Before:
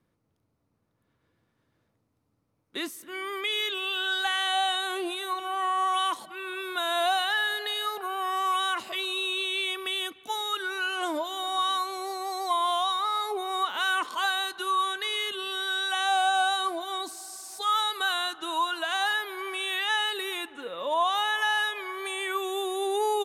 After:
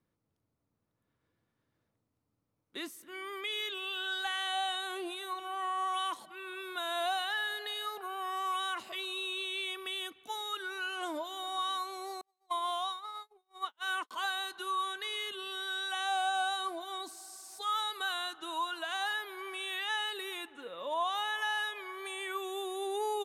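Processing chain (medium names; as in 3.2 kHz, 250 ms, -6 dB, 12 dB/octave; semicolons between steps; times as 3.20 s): 12.21–14.11 s: gate -26 dBFS, range -48 dB; trim -7.5 dB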